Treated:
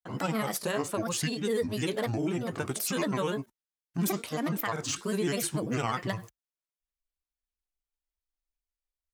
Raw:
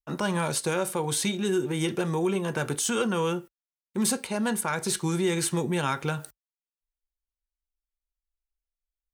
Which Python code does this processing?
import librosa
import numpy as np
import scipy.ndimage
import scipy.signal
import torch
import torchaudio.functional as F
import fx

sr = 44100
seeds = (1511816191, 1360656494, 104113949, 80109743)

y = fx.granulator(x, sr, seeds[0], grain_ms=100.0, per_s=20.0, spray_ms=30.0, spread_st=7)
y = y * librosa.db_to_amplitude(-2.0)